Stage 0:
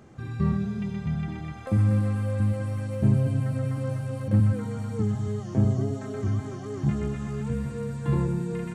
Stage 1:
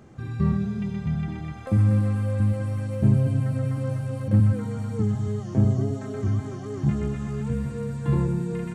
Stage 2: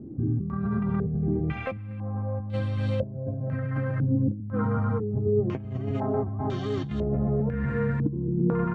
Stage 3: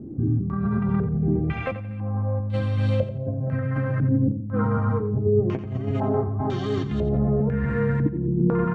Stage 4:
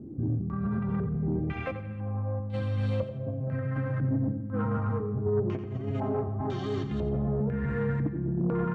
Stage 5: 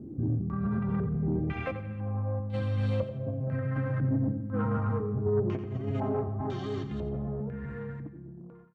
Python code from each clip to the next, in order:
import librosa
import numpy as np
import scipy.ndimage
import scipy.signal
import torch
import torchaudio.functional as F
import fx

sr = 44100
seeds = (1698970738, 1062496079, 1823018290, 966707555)

y1 = fx.low_shelf(x, sr, hz=340.0, db=2.5)
y2 = fx.over_compress(y1, sr, threshold_db=-29.0, ratio=-1.0)
y2 = fx.filter_held_lowpass(y2, sr, hz=2.0, low_hz=300.0, high_hz=3600.0)
y3 = fx.echo_feedback(y2, sr, ms=88, feedback_pct=33, wet_db=-12)
y3 = F.gain(torch.from_numpy(y3), 3.5).numpy()
y4 = fx.cheby_harmonics(y3, sr, harmonics=(5,), levels_db=(-23,), full_scale_db=-9.0)
y4 = fx.rev_freeverb(y4, sr, rt60_s=1.6, hf_ratio=0.6, predelay_ms=45, drr_db=14.0)
y4 = F.gain(torch.from_numpy(y4), -8.0).numpy()
y5 = fx.fade_out_tail(y4, sr, length_s=2.74)